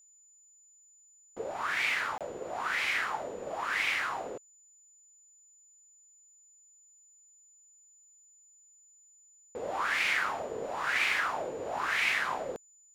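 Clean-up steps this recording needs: band-stop 7 kHz, Q 30; interpolate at 2.18 s, 27 ms

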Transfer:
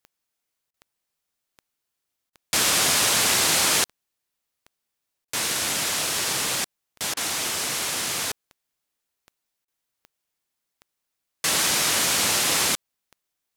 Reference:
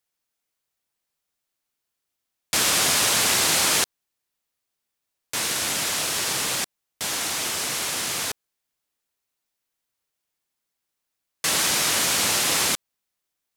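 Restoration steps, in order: de-click; interpolate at 0.71/2.30/5.25/7.14/9.65 s, 28 ms

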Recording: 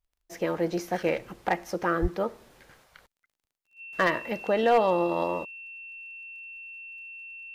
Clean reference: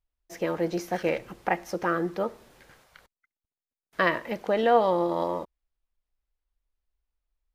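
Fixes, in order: clip repair -13.5 dBFS; de-click; band-stop 2.7 kHz, Q 30; 2.01–2.13 s: high-pass 140 Hz 24 dB/octave

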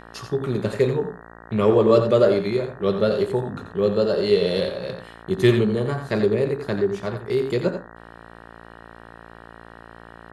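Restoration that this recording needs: de-hum 57 Hz, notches 33; inverse comb 87 ms -8.5 dB

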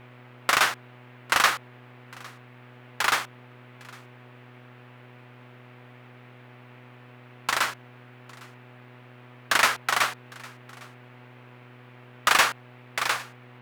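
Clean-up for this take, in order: de-hum 123.4 Hz, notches 22; noise print and reduce 23 dB; inverse comb 806 ms -23.5 dB

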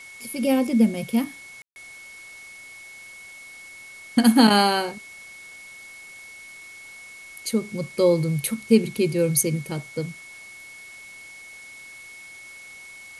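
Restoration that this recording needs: band-stop 2.2 kHz, Q 30; room tone fill 1.62–1.76 s; noise reduction 25 dB, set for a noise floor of -43 dBFS

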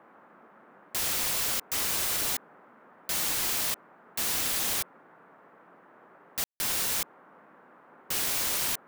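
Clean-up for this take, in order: room tone fill 6.44–6.60 s; noise print and reduce 22 dB

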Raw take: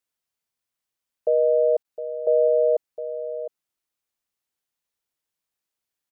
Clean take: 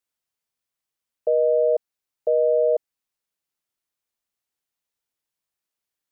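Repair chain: interpolate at 1.83 s, 15 ms; inverse comb 710 ms -11.5 dB

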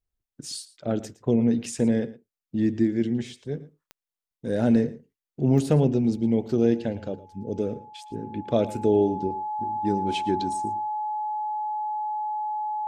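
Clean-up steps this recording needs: de-click; band-stop 850 Hz, Q 30; inverse comb 113 ms -18 dB

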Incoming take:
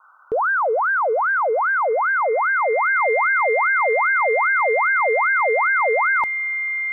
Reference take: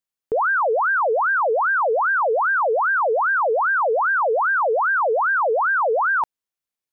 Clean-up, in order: band-stop 2.1 kHz, Q 30; noise print and reduce 30 dB; trim 0 dB, from 6.61 s -10 dB

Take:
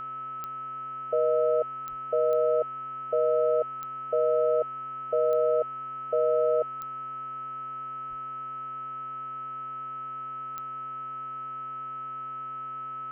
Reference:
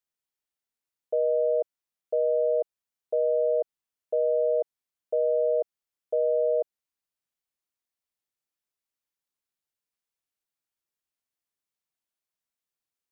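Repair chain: de-click; de-hum 130.5 Hz, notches 24; band-stop 1.3 kHz, Q 30; 1.89–2.01 s: high-pass 140 Hz 24 dB/octave; 8.09–8.21 s: high-pass 140 Hz 24 dB/octave

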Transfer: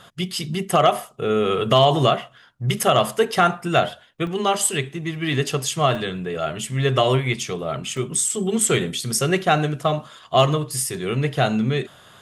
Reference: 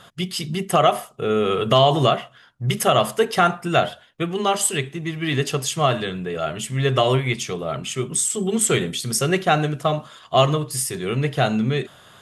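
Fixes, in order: clip repair -6 dBFS; interpolate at 2.33/2.83/4.27/5.95/7.97 s, 2.1 ms

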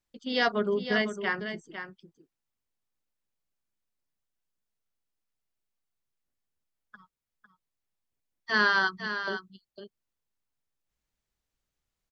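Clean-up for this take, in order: inverse comb 503 ms -9.5 dB

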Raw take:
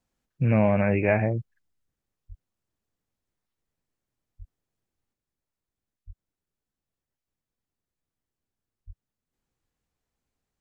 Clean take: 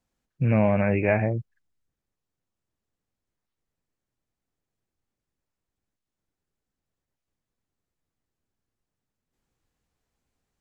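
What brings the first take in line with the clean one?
de-plosive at 2.28/4.38/6.06/8.86 s; gain correction +4 dB, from 5.13 s

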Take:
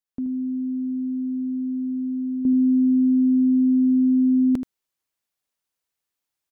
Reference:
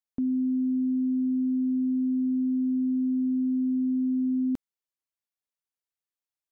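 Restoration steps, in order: inverse comb 79 ms -10 dB; trim 0 dB, from 2.45 s -8.5 dB

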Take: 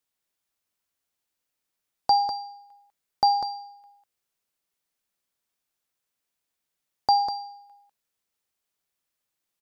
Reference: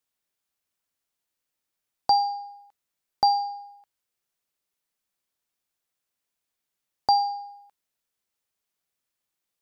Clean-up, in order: inverse comb 198 ms -7.5 dB

